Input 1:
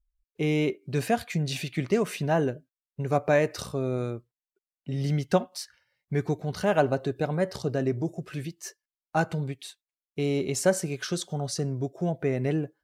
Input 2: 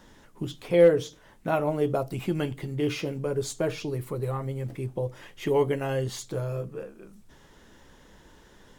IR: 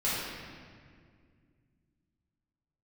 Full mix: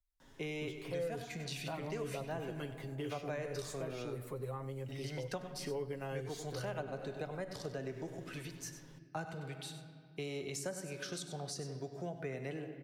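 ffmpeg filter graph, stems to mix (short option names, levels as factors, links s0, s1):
-filter_complex "[0:a]lowshelf=f=480:g=-7,volume=0.562,asplit=3[s0][s1][s2];[s1]volume=0.119[s3];[s2]volume=0.266[s4];[1:a]aecho=1:1:7.4:0.62,adelay=200,volume=0.355,asplit=2[s5][s6];[s6]volume=0.112[s7];[2:a]atrim=start_sample=2205[s8];[s3][s8]afir=irnorm=-1:irlink=0[s9];[s4][s7]amix=inputs=2:normalize=0,aecho=0:1:97:1[s10];[s0][s5][s9][s10]amix=inputs=4:normalize=0,acrossover=split=120|400[s11][s12][s13];[s11]acompressor=threshold=0.00251:ratio=4[s14];[s12]acompressor=threshold=0.00447:ratio=4[s15];[s13]acompressor=threshold=0.00794:ratio=4[s16];[s14][s15][s16]amix=inputs=3:normalize=0"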